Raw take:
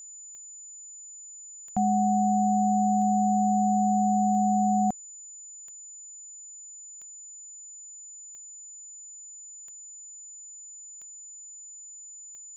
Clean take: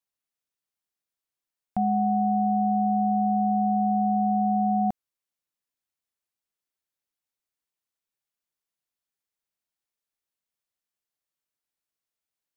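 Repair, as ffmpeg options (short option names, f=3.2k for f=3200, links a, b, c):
-af "adeclick=t=4,bandreject=f=7k:w=30,asetnsamples=n=441:p=0,asendcmd='5.29 volume volume 9.5dB',volume=0dB"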